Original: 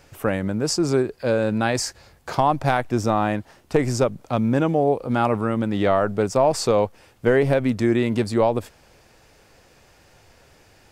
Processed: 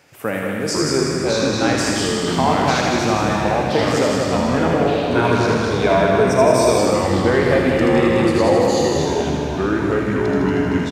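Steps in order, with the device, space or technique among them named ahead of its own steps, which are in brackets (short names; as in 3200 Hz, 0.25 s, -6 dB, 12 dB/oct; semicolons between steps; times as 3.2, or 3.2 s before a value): PA in a hall (HPF 140 Hz; bell 2100 Hz +4 dB 0.81 oct; echo 0.185 s -5.5 dB; reverb RT60 2.0 s, pre-delay 32 ms, DRR 2.5 dB); 5.14–6.78 ripple EQ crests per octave 1.6, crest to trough 13 dB; echoes that change speed 0.437 s, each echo -4 st, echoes 3; thin delay 79 ms, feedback 68%, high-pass 1600 Hz, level -3.5 dB; gain -1 dB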